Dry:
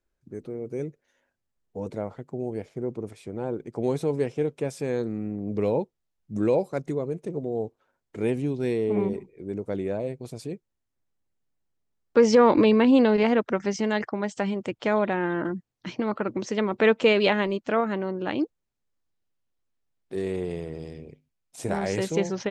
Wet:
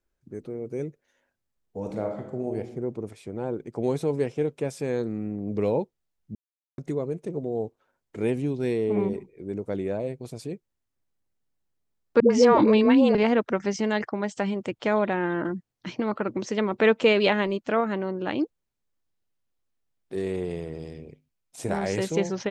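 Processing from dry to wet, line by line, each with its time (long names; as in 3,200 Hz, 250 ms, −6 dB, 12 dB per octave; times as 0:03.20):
0:01.78–0:02.55: thrown reverb, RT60 0.81 s, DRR 2.5 dB
0:06.35–0:06.78: silence
0:12.20–0:13.15: all-pass dispersion highs, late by 102 ms, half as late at 420 Hz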